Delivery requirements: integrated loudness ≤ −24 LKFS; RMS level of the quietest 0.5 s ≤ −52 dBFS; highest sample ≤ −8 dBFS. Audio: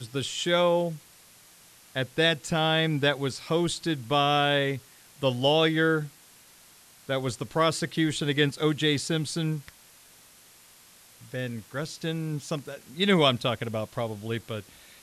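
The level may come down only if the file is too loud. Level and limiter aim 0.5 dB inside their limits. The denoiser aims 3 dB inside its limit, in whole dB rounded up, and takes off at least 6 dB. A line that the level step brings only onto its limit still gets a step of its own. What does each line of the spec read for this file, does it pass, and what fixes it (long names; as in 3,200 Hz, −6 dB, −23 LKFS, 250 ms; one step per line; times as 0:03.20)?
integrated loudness −26.5 LKFS: in spec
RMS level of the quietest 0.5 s −55 dBFS: in spec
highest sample −8.5 dBFS: in spec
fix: no processing needed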